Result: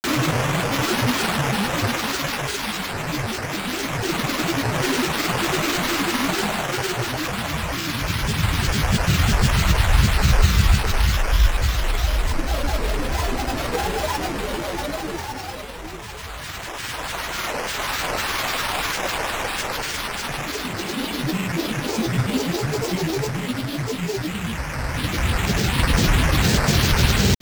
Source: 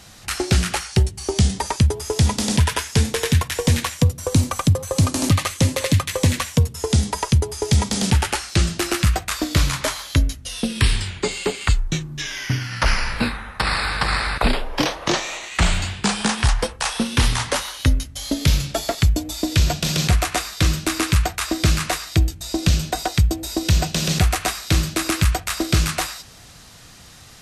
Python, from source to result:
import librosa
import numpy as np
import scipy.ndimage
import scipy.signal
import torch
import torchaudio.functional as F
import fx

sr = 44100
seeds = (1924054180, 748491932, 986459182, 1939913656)

y = fx.rattle_buzz(x, sr, strikes_db=-16.0, level_db=-12.0)
y = fx.paulstretch(y, sr, seeds[0], factor=23.0, window_s=0.25, from_s=16.04)
y = fx.sample_hold(y, sr, seeds[1], rate_hz=6500.0, jitter_pct=0)
y = fx.granulator(y, sr, seeds[2], grain_ms=100.0, per_s=20.0, spray_ms=100.0, spread_st=12)